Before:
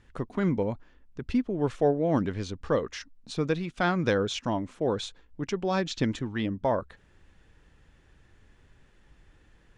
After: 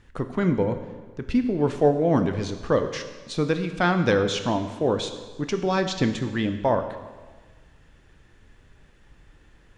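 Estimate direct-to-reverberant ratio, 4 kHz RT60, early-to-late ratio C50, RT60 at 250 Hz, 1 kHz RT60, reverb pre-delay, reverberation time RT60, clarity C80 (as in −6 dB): 7.5 dB, 1.3 s, 9.5 dB, 1.5 s, 1.4 s, 7 ms, 1.4 s, 10.5 dB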